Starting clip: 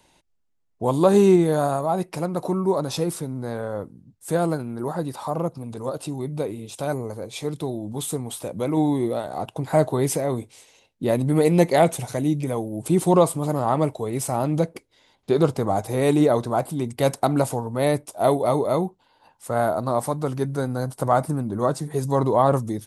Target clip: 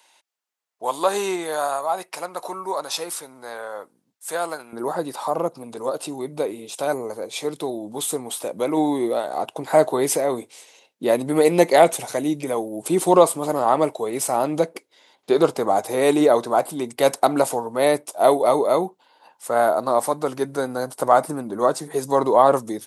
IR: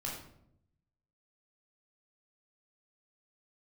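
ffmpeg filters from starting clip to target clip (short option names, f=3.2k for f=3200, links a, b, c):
-af "asetnsamples=n=441:p=0,asendcmd='4.73 highpass f 350',highpass=840,volume=4.5dB"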